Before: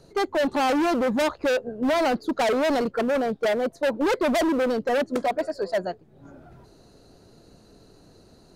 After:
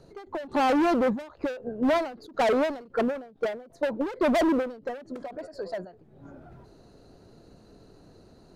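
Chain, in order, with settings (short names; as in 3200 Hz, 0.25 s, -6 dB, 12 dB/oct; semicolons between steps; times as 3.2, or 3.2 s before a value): high shelf 3500 Hz -8 dB; ending taper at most 120 dB/s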